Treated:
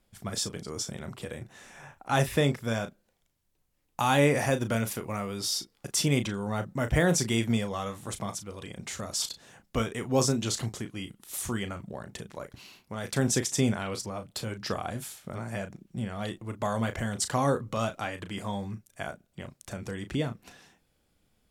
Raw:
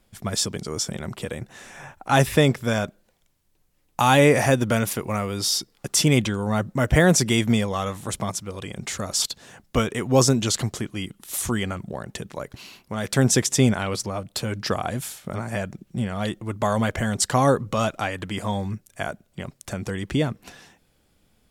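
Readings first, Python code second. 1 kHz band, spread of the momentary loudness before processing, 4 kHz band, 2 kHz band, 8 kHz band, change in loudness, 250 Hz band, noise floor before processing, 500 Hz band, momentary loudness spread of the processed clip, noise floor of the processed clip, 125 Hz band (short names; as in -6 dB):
-7.0 dB, 16 LU, -7.0 dB, -7.0 dB, -7.0 dB, -7.0 dB, -7.0 dB, -65 dBFS, -7.0 dB, 16 LU, -72 dBFS, -7.0 dB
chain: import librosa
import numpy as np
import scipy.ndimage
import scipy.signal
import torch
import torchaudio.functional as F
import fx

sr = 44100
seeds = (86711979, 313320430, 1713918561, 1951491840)

y = fx.doubler(x, sr, ms=35.0, db=-10.0)
y = F.gain(torch.from_numpy(y), -7.5).numpy()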